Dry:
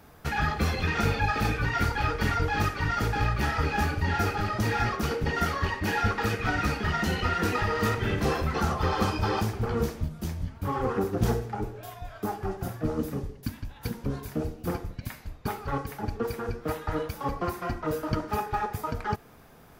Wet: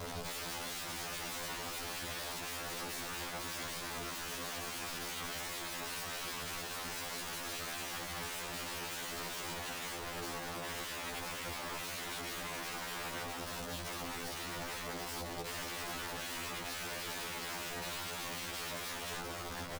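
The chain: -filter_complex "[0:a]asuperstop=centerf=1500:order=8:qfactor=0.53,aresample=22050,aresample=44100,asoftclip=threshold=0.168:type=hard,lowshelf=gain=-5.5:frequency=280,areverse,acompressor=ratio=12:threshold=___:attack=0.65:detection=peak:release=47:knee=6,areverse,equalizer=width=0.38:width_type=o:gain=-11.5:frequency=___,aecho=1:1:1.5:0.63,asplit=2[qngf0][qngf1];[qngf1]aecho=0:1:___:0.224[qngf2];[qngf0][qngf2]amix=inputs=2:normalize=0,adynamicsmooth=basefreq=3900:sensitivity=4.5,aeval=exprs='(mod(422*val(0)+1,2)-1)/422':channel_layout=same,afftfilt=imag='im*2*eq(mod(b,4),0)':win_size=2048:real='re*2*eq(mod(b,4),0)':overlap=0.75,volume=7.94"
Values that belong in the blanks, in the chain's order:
0.00562, 7600, 503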